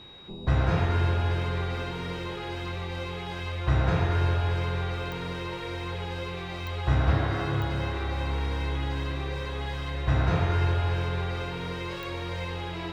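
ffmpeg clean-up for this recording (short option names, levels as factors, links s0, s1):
-af "adeclick=t=4,bandreject=f=3800:w=30"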